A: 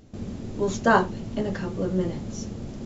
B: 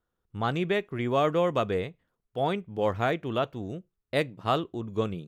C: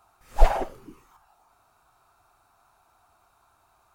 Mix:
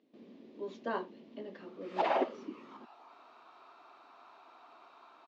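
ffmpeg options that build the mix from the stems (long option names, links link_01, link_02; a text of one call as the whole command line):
ffmpeg -i stem1.wav -i stem2.wav -i stem3.wav -filter_complex "[0:a]bandreject=frequency=1300:width=12,volume=-14.5dB[link_01];[2:a]adelay=1600,volume=2.5dB,dynaudnorm=framelen=230:gausssize=5:maxgain=7dB,alimiter=limit=-10dB:level=0:latency=1:release=81,volume=0dB[link_02];[link_01][link_02]amix=inputs=2:normalize=0,highpass=frequency=260:width=0.5412,highpass=frequency=260:width=1.3066,equalizer=frequency=260:width_type=q:width=4:gain=3,equalizer=frequency=790:width_type=q:width=4:gain=-6,equalizer=frequency=1500:width_type=q:width=4:gain=-6,lowpass=frequency=4000:width=0.5412,lowpass=frequency=4000:width=1.3066" out.wav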